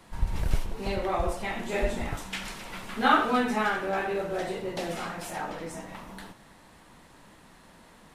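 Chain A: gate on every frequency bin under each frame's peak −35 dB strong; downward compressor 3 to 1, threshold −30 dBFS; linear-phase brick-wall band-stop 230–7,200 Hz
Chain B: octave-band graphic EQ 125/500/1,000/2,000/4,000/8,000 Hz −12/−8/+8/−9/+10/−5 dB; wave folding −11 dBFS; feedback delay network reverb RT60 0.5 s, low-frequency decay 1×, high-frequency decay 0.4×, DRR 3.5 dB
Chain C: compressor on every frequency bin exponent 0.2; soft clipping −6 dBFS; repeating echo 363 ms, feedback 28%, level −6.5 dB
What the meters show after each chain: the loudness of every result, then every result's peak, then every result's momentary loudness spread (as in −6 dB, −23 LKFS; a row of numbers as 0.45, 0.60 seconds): −44.0, −28.0, −18.5 LKFS; −20.0, −6.5, −6.0 dBFS; 19, 18, 5 LU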